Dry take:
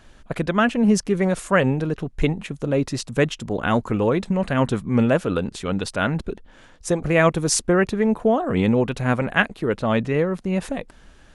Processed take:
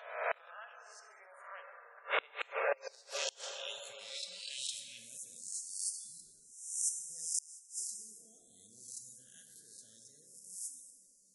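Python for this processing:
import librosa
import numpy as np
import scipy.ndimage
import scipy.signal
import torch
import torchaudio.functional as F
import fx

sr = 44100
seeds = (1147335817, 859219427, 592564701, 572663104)

y = fx.spec_swells(x, sr, rise_s=0.79)
y = fx.cheby2_highpass(y, sr, hz=fx.steps((0.0, 260.0), (2.86, 1400.0), (4.97, 2700.0)), order=4, stop_db=50)
y = fx.rev_plate(y, sr, seeds[0], rt60_s=3.4, hf_ratio=0.35, predelay_ms=0, drr_db=1.0)
y = fx.gate_flip(y, sr, shuts_db=-17.0, range_db=-30)
y = fx.spec_gate(y, sr, threshold_db=-20, keep='strong')
y = y * 10.0 ** (-2.0 / 20.0)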